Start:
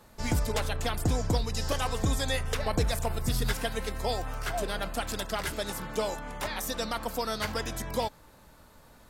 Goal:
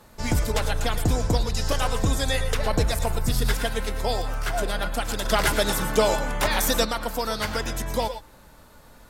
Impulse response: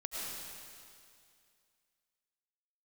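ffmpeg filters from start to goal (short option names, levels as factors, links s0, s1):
-filter_complex "[1:a]atrim=start_sample=2205,afade=t=out:st=0.14:d=0.01,atrim=end_sample=6615,asetrate=33957,aresample=44100[s0];[0:a][s0]afir=irnorm=-1:irlink=0,asettb=1/sr,asplit=3[s1][s2][s3];[s1]atrim=end=5.254[s4];[s2]atrim=start=5.25:end=6.85,asetpts=PTS-STARTPTS,afade=t=in:d=0.004:c=qsin,afade=t=out:st=1.596:d=0.004:c=qsin,acontrast=54[s5];[s3]atrim=start=6.846[s6];[s4][s5]acrossfade=d=0.004:c1=hsin:c2=qsin[s7];[s7][s6]acrossfade=d=0.004:c1=qsin:c2=hsin,volume=2.24"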